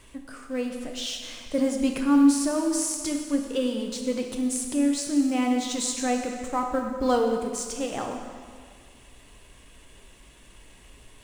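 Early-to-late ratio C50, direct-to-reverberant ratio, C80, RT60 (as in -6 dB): 4.5 dB, 2.5 dB, 5.5 dB, 1.9 s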